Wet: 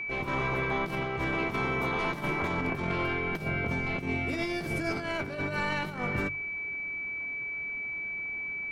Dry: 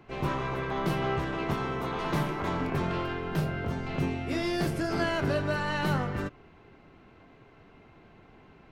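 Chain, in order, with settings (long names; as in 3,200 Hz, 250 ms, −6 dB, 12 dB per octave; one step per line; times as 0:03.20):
steady tone 2,300 Hz −34 dBFS
compressor whose output falls as the input rises −30 dBFS, ratio −0.5
mains-hum notches 50/100/150 Hz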